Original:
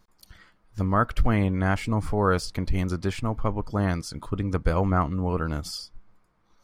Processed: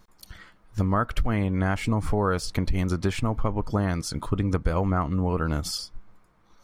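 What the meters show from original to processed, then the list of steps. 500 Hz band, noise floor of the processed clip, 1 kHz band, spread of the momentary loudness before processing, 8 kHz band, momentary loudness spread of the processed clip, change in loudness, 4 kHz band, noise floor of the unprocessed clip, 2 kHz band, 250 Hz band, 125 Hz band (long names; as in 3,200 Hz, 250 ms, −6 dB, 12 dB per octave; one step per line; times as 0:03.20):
−0.5 dB, −60 dBFS, −1.5 dB, 9 LU, +4.0 dB, 4 LU, 0.0 dB, +2.5 dB, −65 dBFS, −1.0 dB, +0.5 dB, +0.5 dB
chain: notch filter 4,800 Hz, Q 17
downward compressor, threshold −25 dBFS, peak gain reduction 10 dB
level +5.5 dB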